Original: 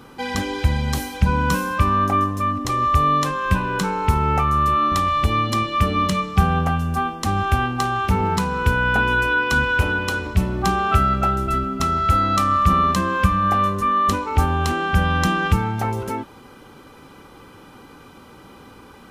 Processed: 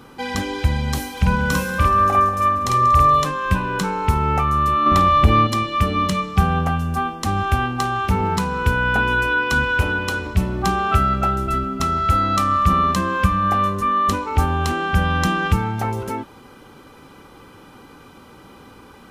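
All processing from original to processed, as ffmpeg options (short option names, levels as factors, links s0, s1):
-filter_complex "[0:a]asettb=1/sr,asplit=3[s0][s1][s2];[s0]atrim=end=1.124[s3];[s1]atrim=start=1.12:end=3.25,asetpts=PTS-STARTPTS,afade=t=in:d=0.004:c=qsin,afade=t=out:st=2.126:d=0.004:c=qsin,bandreject=f=50:t=h:w=6,bandreject=f=100:t=h:w=6,bandreject=f=150:t=h:w=6,bandreject=f=200:t=h:w=6,bandreject=f=250:t=h:w=6,bandreject=f=300:t=h:w=6,bandreject=f=350:t=h:w=6,bandreject=f=400:t=h:w=6,asplit=2[s4][s5];[s5]adelay=49,volume=0.794[s6];[s4][s6]amix=inputs=2:normalize=0,atrim=end_sample=93933,aecho=1:1:188|376|564|752|940:0.178|0.0925|0.0481|0.025|0.013,atrim=end_sample=93933[s7];[s2]atrim=start=3.246[s8];[s3][s7]acrossfade=d=0.004:c1=hsin:c2=qsin[s9];[s9][s8]acrossfade=d=0.004:c1=qsin:c2=hsin,asettb=1/sr,asplit=3[s10][s11][s12];[s10]atrim=end=4.864[s13];[s11]atrim=start=4.86:end=5.47,asetpts=PTS-STARTPTS,afade=t=in:d=0.004:c=qsin,afade=t=out:st=0.606:d=0.004:c=qsin,equalizer=f=8700:t=o:w=2.8:g=-9.5,acontrast=85,asplit=2[s14][s15];[s15]adelay=49,volume=0.211[s16];[s14][s16]amix=inputs=2:normalize=0,atrim=end_sample=26901[s17];[s12]atrim=start=5.466[s18];[s13][s17]acrossfade=d=0.004:c1=hsin:c2=qsin[s19];[s19][s18]acrossfade=d=0.004:c1=qsin:c2=hsin"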